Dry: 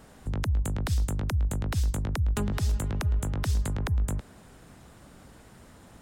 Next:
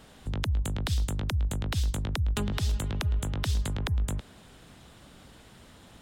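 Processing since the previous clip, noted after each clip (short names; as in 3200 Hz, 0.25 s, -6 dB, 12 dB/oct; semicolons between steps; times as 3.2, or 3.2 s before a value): bell 3400 Hz +9 dB 0.94 oct; gain -1.5 dB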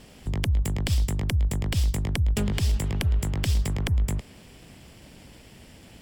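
minimum comb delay 0.39 ms; gain +4.5 dB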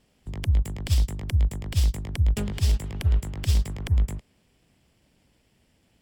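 upward expander 2.5:1, over -33 dBFS; gain +3.5 dB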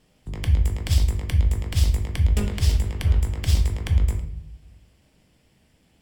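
shoebox room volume 140 m³, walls mixed, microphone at 0.52 m; gain +2 dB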